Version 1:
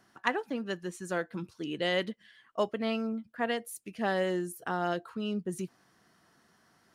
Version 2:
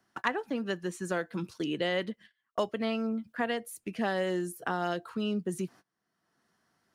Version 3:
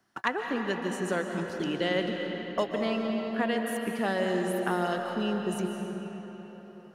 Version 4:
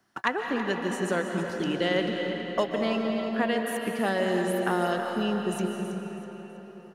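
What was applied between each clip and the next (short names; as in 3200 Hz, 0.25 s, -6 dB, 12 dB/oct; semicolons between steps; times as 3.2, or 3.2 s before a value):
gate -52 dBFS, range -29 dB; three-band squash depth 70%
reverb RT60 4.4 s, pre-delay 0.105 s, DRR 2.5 dB; gain +1 dB
feedback echo 0.325 s, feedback 36%, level -12 dB; gain +2 dB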